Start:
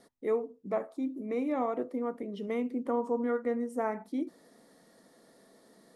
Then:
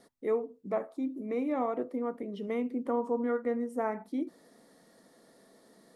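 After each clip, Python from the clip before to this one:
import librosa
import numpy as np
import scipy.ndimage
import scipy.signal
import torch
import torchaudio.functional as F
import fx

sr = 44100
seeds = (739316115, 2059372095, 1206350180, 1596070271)

y = fx.dynamic_eq(x, sr, hz=6800.0, q=0.79, threshold_db=-59.0, ratio=4.0, max_db=-4)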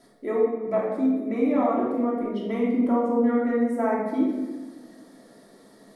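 y = fx.room_shoebox(x, sr, seeds[0], volume_m3=990.0, walls='mixed', distance_m=2.9)
y = y * librosa.db_to_amplitude(1.5)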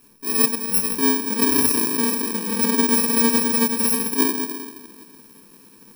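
y = fx.bit_reversed(x, sr, seeds[1], block=64)
y = y * librosa.db_to_amplitude(3.5)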